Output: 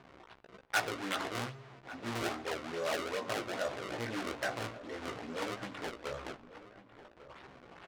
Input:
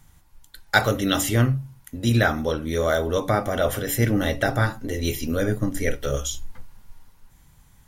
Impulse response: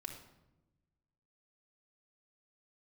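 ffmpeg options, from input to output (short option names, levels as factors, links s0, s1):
-filter_complex "[0:a]aeval=exprs='val(0)+0.5*0.0299*sgn(val(0))':c=same,acrusher=samples=30:mix=1:aa=0.000001:lfo=1:lforange=48:lforate=2.4,flanger=delay=15:depth=2.4:speed=1.6,adynamicsmooth=sensitivity=2:basefreq=2700,asoftclip=type=tanh:threshold=0.15,highpass=f=820:p=1,asplit=2[s0][s1];[s1]adelay=1146,lowpass=f=2000:p=1,volume=0.178,asplit=2[s2][s3];[s3]adelay=1146,lowpass=f=2000:p=1,volume=0.35,asplit=2[s4][s5];[s5]adelay=1146,lowpass=f=2000:p=1,volume=0.35[s6];[s0][s2][s4][s6]amix=inputs=4:normalize=0,asplit=2[s7][s8];[1:a]atrim=start_sample=2205[s9];[s8][s9]afir=irnorm=-1:irlink=0,volume=0.282[s10];[s7][s10]amix=inputs=2:normalize=0,volume=0.501"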